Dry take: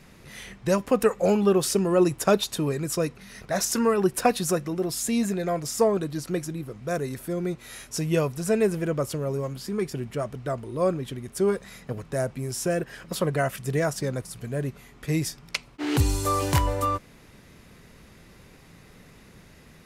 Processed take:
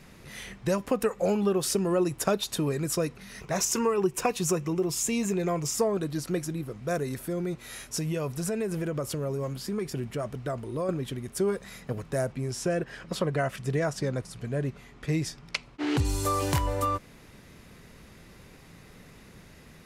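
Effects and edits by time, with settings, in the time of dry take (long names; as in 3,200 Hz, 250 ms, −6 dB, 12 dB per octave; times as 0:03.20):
0:03.40–0:05.75: EQ curve with evenly spaced ripples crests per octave 0.73, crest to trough 7 dB
0:07.03–0:10.89: downward compressor, threshold −26 dBFS
0:12.32–0:16.05: high-frequency loss of the air 52 metres
whole clip: downward compressor 2.5 to 1, threshold −24 dBFS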